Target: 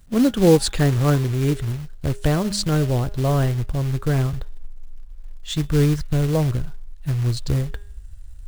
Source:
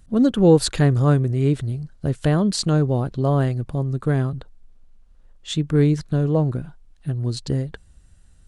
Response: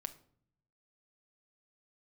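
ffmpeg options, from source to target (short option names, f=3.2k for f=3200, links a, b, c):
-af "bandreject=f=203.9:t=h:w=4,bandreject=f=407.8:t=h:w=4,bandreject=f=611.7:t=h:w=4,bandreject=f=815.6:t=h:w=4,bandreject=f=1.0195k:t=h:w=4,bandreject=f=1.2234k:t=h:w=4,bandreject=f=1.4273k:t=h:w=4,bandreject=f=1.6312k:t=h:w=4,bandreject=f=1.8351k:t=h:w=4,bandreject=f=2.039k:t=h:w=4,bandreject=f=2.2429k:t=h:w=4,bandreject=f=2.4468k:t=h:w=4,bandreject=f=2.6507k:t=h:w=4,bandreject=f=2.8546k:t=h:w=4,bandreject=f=3.0585k:t=h:w=4,bandreject=f=3.2624k:t=h:w=4,bandreject=f=3.4663k:t=h:w=4,bandreject=f=3.6702k:t=h:w=4,acrusher=bits=4:mode=log:mix=0:aa=0.000001,asubboost=boost=6.5:cutoff=78"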